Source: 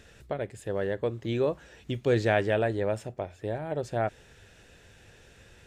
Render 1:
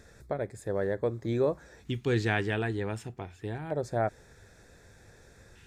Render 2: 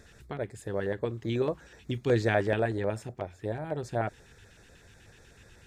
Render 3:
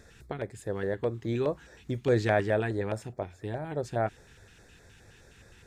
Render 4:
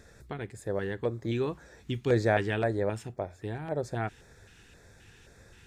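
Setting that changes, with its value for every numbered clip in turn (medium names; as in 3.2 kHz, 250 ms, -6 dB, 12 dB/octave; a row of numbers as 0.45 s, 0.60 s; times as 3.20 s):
LFO notch, rate: 0.27 Hz, 8.1 Hz, 4.8 Hz, 1.9 Hz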